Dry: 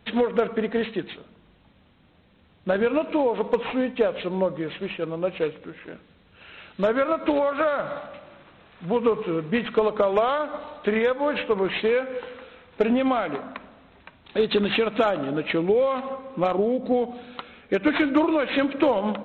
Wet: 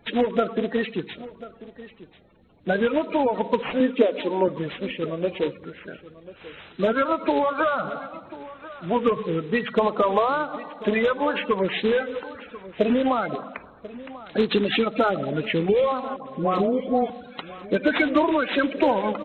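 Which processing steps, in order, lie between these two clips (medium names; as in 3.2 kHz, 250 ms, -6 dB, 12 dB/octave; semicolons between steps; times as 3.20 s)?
coarse spectral quantiser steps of 30 dB; 3.80–4.48 s: resonant low shelf 180 Hz -13.5 dB, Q 3; 16.16–17.10 s: phase dispersion highs, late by 107 ms, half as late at 1 kHz; on a send: delay 1040 ms -17.5 dB; on the sum: trim +1 dB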